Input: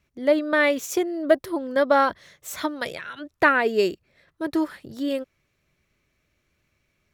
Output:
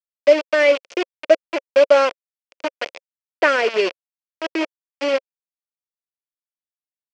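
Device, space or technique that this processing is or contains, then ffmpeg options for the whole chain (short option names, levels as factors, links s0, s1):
hand-held game console: -af "acrusher=bits=3:mix=0:aa=0.000001,highpass=460,equalizer=f=540:t=q:w=4:g=7,equalizer=f=840:t=q:w=4:g=-7,equalizer=f=1200:t=q:w=4:g=-6,equalizer=f=1700:t=q:w=4:g=-5,equalizer=f=2500:t=q:w=4:g=4,equalizer=f=3800:t=q:w=4:g=-10,lowpass=f=4600:w=0.5412,lowpass=f=4600:w=1.3066,volume=1.68"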